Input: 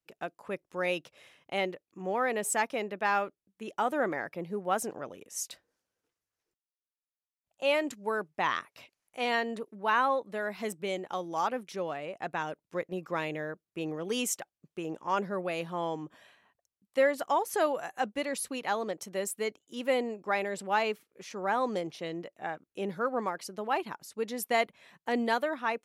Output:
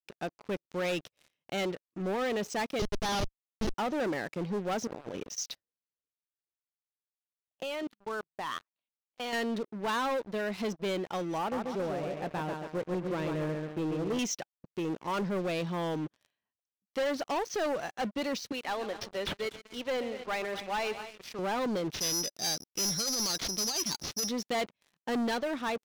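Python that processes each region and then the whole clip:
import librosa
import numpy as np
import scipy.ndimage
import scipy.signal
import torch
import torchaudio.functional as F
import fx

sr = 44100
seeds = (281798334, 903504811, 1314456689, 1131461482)

y = fx.chain(x, sr, fx.low_shelf(hz=84.0, db=-11.5),
    fx.transient(attack_db=10, sustain_db=-8),
    fx.schmitt(flips_db=-33.5), at=(2.79, 3.74))
y = fx.chain(y, sr, fx.dynamic_eq(hz=780.0, q=1.1, threshold_db=-54.0, ratio=4.0, max_db=6),
    fx.over_compress(threshold_db=-45.0, ratio=-1.0), at=(4.87, 5.38))
y = fx.chain(y, sr, fx.peak_eq(hz=89.0, db=-10.0, octaves=1.4),
    fx.level_steps(step_db=17),
    fx.cheby_ripple(hz=4600.0, ripple_db=6), at=(7.63, 9.33))
y = fx.chain(y, sr, fx.lowpass(hz=1100.0, slope=6),
    fx.echo_feedback(ms=137, feedback_pct=45, wet_db=-5.5), at=(11.38, 14.19))
y = fx.chain(y, sr, fx.highpass(hz=700.0, slope=6),
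    fx.echo_multitap(ms=(130, 242, 266), db=(-15.5, -16.5, -20.0)),
    fx.resample_linear(factor=4), at=(18.52, 21.39))
y = fx.chain(y, sr, fx.over_compress(threshold_db=-32.0, ratio=-0.5),
    fx.resample_bad(factor=8, down='none', up='zero_stuff'), at=(21.94, 24.29))
y = scipy.signal.sosfilt(scipy.signal.cheby1(5, 1.0, 6000.0, 'lowpass', fs=sr, output='sos'), y)
y = fx.peak_eq(y, sr, hz=1100.0, db=-8.0, octaves=2.9)
y = fx.leveller(y, sr, passes=5)
y = y * librosa.db_to_amplitude(-9.0)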